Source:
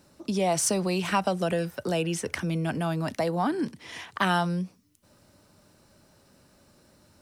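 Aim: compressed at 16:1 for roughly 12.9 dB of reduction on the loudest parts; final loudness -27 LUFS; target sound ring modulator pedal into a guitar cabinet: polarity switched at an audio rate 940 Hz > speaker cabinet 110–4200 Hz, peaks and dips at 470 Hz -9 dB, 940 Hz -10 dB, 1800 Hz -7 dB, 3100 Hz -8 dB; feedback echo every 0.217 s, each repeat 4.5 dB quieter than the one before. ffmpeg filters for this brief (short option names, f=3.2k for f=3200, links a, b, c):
-af "acompressor=threshold=-33dB:ratio=16,aecho=1:1:217|434|651|868|1085|1302|1519|1736|1953:0.596|0.357|0.214|0.129|0.0772|0.0463|0.0278|0.0167|0.01,aeval=exprs='val(0)*sgn(sin(2*PI*940*n/s))':c=same,highpass=110,equalizer=f=470:t=q:w=4:g=-9,equalizer=f=940:t=q:w=4:g=-10,equalizer=f=1.8k:t=q:w=4:g=-7,equalizer=f=3.1k:t=q:w=4:g=-8,lowpass=f=4.2k:w=0.5412,lowpass=f=4.2k:w=1.3066,volume=13dB"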